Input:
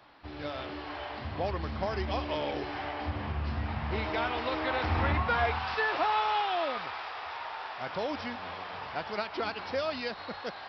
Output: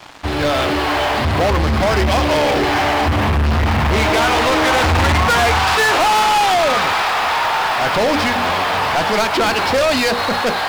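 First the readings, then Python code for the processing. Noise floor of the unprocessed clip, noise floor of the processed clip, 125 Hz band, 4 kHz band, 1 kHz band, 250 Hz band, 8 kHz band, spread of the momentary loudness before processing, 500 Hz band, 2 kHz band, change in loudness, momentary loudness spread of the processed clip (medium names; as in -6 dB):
-43 dBFS, -20 dBFS, +16.5 dB, +20.0 dB, +17.0 dB, +17.5 dB, no reading, 11 LU, +17.0 dB, +18.0 dB, +17.5 dB, 4 LU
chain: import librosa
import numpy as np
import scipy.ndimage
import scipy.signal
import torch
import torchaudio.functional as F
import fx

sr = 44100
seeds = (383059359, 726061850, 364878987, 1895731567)

y = fx.hum_notches(x, sr, base_hz=60, count=9)
y = fx.leveller(y, sr, passes=5)
y = F.gain(torch.from_numpy(y), 6.5).numpy()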